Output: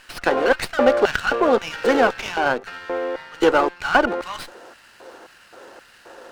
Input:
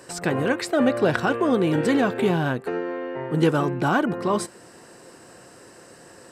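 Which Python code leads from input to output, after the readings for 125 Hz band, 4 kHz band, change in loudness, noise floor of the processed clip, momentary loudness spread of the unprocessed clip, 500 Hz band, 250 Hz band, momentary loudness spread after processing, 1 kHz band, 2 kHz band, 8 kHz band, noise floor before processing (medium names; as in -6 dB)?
-14.5 dB, +5.5 dB, +2.5 dB, -51 dBFS, 8 LU, +4.0 dB, -3.5 dB, 11 LU, +5.5 dB, +6.0 dB, -1.5 dB, -48 dBFS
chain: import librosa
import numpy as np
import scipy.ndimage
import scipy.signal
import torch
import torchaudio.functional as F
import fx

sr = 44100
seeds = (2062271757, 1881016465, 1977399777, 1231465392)

y = fx.filter_lfo_highpass(x, sr, shape='square', hz=1.9, low_hz=410.0, high_hz=2100.0, q=1.1)
y = fx.cabinet(y, sr, low_hz=140.0, low_slope=12, high_hz=7400.0, hz=(230.0, 550.0, 830.0, 1400.0, 2800.0, 4300.0), db=(4, 4, 7, 8, 5, 5))
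y = fx.running_max(y, sr, window=5)
y = F.gain(torch.from_numpy(y), 2.0).numpy()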